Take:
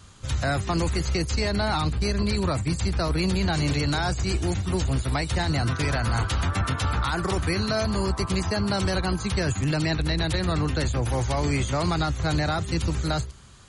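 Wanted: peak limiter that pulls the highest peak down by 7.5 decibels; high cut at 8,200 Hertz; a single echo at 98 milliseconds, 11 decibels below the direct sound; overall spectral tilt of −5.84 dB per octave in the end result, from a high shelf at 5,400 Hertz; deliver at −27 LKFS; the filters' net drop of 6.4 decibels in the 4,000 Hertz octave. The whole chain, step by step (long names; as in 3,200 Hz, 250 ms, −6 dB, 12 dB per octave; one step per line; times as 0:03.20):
low-pass filter 8,200 Hz
parametric band 4,000 Hz −8.5 dB
high-shelf EQ 5,400 Hz +3.5 dB
brickwall limiter −23 dBFS
single-tap delay 98 ms −11 dB
level +3.5 dB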